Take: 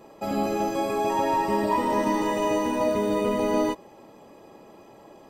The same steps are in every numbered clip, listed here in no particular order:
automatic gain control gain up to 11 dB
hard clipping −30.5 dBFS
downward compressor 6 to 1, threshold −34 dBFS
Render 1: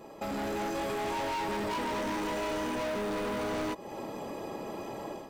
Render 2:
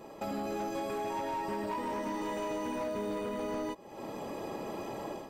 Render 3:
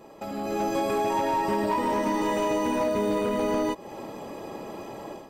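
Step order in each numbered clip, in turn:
hard clipping, then automatic gain control, then downward compressor
automatic gain control, then downward compressor, then hard clipping
downward compressor, then hard clipping, then automatic gain control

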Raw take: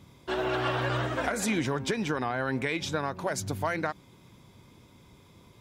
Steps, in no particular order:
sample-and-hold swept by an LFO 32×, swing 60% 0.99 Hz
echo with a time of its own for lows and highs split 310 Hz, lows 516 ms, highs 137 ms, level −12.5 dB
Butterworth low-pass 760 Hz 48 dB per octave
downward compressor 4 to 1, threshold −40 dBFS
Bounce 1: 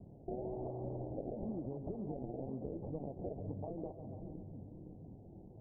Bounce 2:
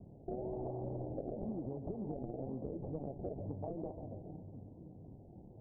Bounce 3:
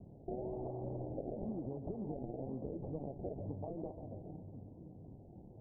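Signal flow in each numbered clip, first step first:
sample-and-hold swept by an LFO, then echo with a time of its own for lows and highs, then downward compressor, then Butterworth low-pass
echo with a time of its own for lows and highs, then sample-and-hold swept by an LFO, then Butterworth low-pass, then downward compressor
echo with a time of its own for lows and highs, then sample-and-hold swept by an LFO, then downward compressor, then Butterworth low-pass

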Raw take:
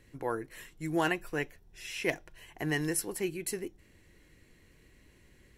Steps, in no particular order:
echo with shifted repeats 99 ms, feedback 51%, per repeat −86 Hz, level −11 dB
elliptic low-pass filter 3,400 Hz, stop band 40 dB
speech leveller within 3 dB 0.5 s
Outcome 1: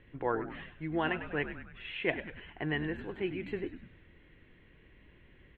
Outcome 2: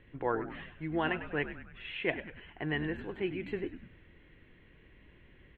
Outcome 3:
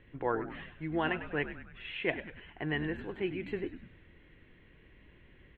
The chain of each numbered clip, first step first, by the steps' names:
echo with shifted repeats, then speech leveller, then elliptic low-pass filter
speech leveller, then elliptic low-pass filter, then echo with shifted repeats
speech leveller, then echo with shifted repeats, then elliptic low-pass filter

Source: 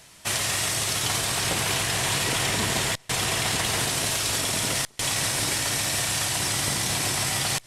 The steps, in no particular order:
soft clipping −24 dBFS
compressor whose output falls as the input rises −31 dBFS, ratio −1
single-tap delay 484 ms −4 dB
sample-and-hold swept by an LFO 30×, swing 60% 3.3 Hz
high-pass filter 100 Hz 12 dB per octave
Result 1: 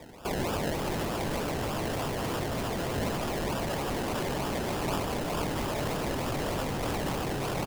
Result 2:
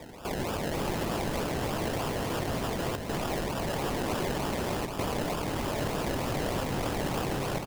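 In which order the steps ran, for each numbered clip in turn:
high-pass filter, then sample-and-hold swept by an LFO, then single-tap delay, then soft clipping, then compressor whose output falls as the input rises
high-pass filter, then sample-and-hold swept by an LFO, then compressor whose output falls as the input rises, then soft clipping, then single-tap delay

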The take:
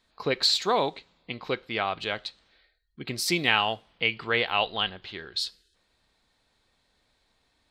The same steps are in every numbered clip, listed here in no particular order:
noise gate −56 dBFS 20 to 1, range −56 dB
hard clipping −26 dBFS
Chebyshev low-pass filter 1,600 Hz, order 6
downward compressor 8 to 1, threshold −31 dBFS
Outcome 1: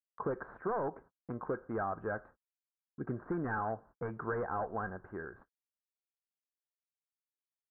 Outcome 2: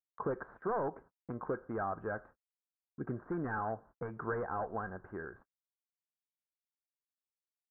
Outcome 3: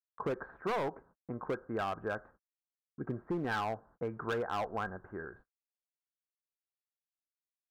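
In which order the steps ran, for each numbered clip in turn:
hard clipping, then Chebyshev low-pass filter, then downward compressor, then noise gate
hard clipping, then downward compressor, then Chebyshev low-pass filter, then noise gate
Chebyshev low-pass filter, then noise gate, then hard clipping, then downward compressor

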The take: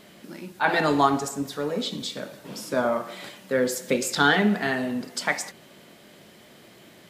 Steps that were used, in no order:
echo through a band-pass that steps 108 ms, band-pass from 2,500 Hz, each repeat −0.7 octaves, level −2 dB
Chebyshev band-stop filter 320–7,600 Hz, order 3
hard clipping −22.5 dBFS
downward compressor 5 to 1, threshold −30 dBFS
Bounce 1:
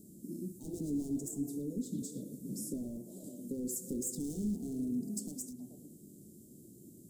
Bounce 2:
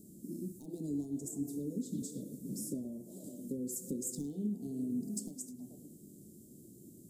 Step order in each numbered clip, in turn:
echo through a band-pass that steps, then hard clipping, then downward compressor, then Chebyshev band-stop filter
echo through a band-pass that steps, then downward compressor, then hard clipping, then Chebyshev band-stop filter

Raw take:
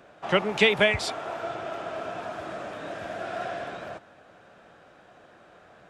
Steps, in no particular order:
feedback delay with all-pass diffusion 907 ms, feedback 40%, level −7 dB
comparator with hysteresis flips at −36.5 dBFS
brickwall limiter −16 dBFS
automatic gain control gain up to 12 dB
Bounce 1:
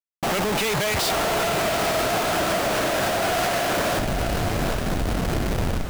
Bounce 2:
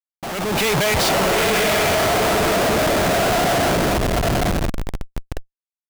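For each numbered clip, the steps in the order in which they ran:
automatic gain control, then comparator with hysteresis, then feedback delay with all-pass diffusion, then brickwall limiter
feedback delay with all-pass diffusion, then comparator with hysteresis, then automatic gain control, then brickwall limiter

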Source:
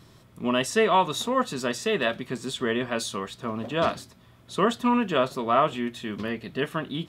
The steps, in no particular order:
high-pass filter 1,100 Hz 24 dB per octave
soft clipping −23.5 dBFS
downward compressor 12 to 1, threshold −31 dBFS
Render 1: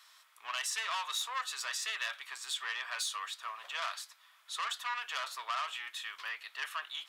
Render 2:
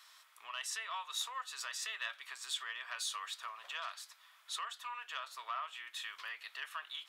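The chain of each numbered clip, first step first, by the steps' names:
soft clipping, then high-pass filter, then downward compressor
downward compressor, then soft clipping, then high-pass filter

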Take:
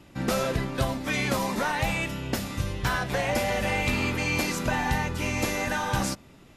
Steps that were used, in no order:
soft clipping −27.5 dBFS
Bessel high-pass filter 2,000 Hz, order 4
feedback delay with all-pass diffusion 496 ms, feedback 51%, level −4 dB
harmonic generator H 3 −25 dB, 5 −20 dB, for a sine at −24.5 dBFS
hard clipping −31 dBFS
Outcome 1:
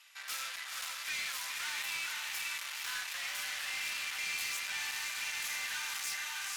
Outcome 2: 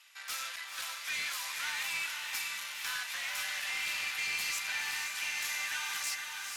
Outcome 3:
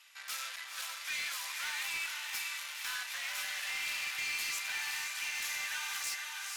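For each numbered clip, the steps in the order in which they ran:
feedback delay with all-pass diffusion, then hard clipping, then Bessel high-pass filter, then soft clipping, then harmonic generator
soft clipping, then Bessel high-pass filter, then hard clipping, then harmonic generator, then feedback delay with all-pass diffusion
soft clipping, then feedback delay with all-pass diffusion, then harmonic generator, then Bessel high-pass filter, then hard clipping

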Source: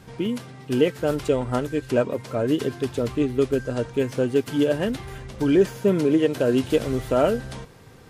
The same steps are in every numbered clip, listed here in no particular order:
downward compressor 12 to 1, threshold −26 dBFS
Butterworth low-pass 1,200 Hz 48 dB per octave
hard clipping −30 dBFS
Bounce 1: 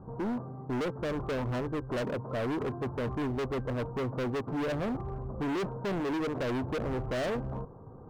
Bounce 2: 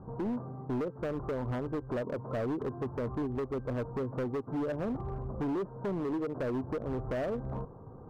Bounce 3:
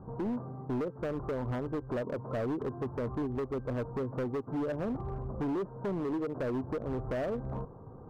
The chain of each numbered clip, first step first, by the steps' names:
Butterworth low-pass, then hard clipping, then downward compressor
Butterworth low-pass, then downward compressor, then hard clipping
downward compressor, then Butterworth low-pass, then hard clipping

